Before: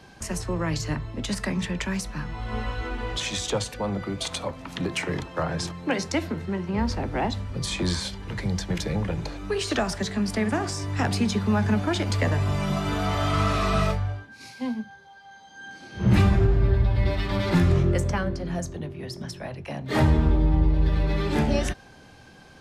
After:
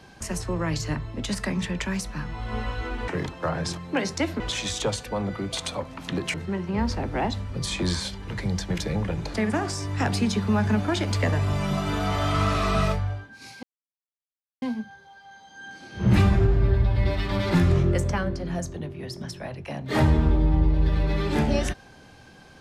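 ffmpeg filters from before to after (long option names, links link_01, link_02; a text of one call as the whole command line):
ffmpeg -i in.wav -filter_complex "[0:a]asplit=6[link_01][link_02][link_03][link_04][link_05][link_06];[link_01]atrim=end=3.082[link_07];[link_02]atrim=start=5.018:end=6.342[link_08];[link_03]atrim=start=3.078:end=5.022[link_09];[link_04]atrim=start=6.338:end=9.342[link_10];[link_05]atrim=start=10.328:end=14.62,asetpts=PTS-STARTPTS,afade=type=out:start_time=4.288:duration=0.004:curve=hsin,apad=pad_dur=0.99[link_11];[link_06]atrim=start=14.62,asetpts=PTS-STARTPTS,afade=type=in:duration=0.004:curve=hsin[link_12];[link_07][link_08]acrossfade=duration=0.004:curve1=hsin:curve2=hsin[link_13];[link_13][link_09]acrossfade=duration=0.004:curve1=hsin:curve2=hsin[link_14];[link_14][link_10]acrossfade=duration=0.004:curve1=hsin:curve2=hsin[link_15];[link_11][link_12]concat=n=2:v=0:a=1[link_16];[link_15][link_16]acrossfade=duration=0.004:curve1=hsin:curve2=hsin" out.wav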